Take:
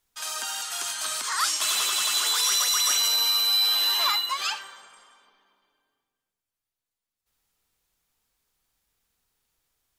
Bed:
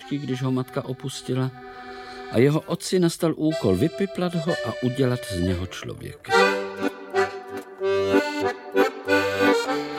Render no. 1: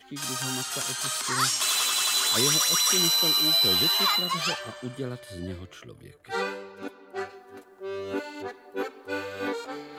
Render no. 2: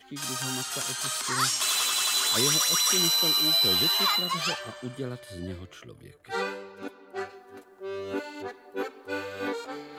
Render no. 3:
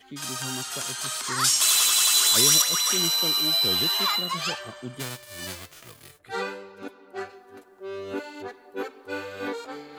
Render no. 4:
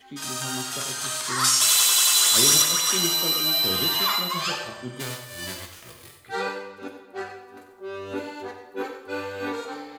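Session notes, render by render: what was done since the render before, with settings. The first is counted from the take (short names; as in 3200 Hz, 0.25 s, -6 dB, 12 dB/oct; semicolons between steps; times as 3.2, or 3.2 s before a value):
add bed -12 dB
gain -1 dB
1.44–2.62 high shelf 4000 Hz +9.5 dB; 4.99–6.18 spectral whitening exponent 0.3
echo 93 ms -10 dB; plate-style reverb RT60 0.75 s, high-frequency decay 0.9×, DRR 4 dB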